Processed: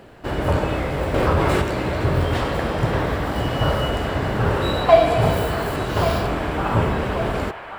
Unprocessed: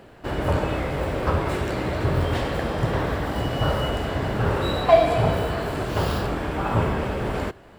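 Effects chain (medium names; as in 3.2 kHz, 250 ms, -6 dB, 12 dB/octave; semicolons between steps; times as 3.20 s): 5.21–5.75 s: treble shelf 6.6 kHz -> 11 kHz +10 dB; feedback echo behind a band-pass 1133 ms, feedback 51%, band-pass 1.5 kHz, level -7 dB; 1.14–1.62 s: level flattener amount 70%; trim +2.5 dB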